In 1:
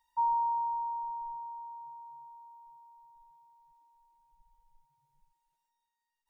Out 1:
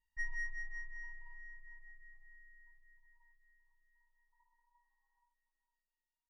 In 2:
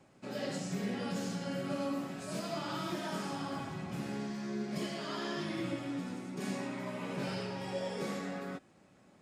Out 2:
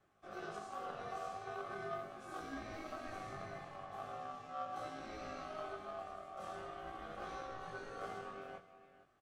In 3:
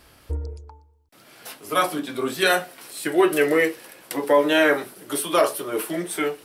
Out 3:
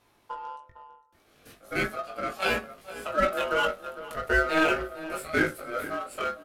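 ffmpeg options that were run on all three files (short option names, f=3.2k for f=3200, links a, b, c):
-filter_complex "[0:a]asplit=2[a][b];[b]adelay=454.8,volume=-12dB,highshelf=f=4k:g=-10.2[c];[a][c]amix=inputs=2:normalize=0,aeval=exprs='val(0)*sin(2*PI*950*n/s)':c=same,flanger=delay=18.5:depth=2.4:speed=0.4,asplit=2[d][e];[e]adynamicsmooth=sensitivity=6:basefreq=540,volume=0.5dB[f];[d][f]amix=inputs=2:normalize=0,bass=f=250:g=0,treble=f=4k:g=-3,volume=-6.5dB"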